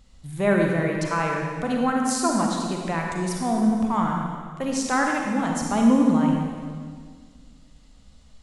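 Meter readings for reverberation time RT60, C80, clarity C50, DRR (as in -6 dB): 1.8 s, 2.5 dB, 1.0 dB, 0.0 dB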